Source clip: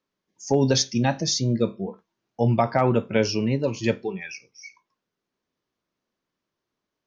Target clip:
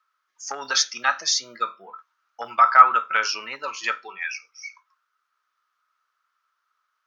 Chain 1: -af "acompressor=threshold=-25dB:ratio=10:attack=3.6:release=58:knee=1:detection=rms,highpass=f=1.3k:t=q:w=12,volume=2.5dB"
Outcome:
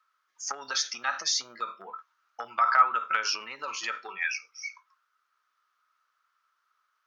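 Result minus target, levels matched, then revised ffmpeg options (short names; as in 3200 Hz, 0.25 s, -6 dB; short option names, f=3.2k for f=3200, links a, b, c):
compressor: peak gain reduction +8.5 dB
-af "acompressor=threshold=-15.5dB:ratio=10:attack=3.6:release=58:knee=1:detection=rms,highpass=f=1.3k:t=q:w=12,volume=2.5dB"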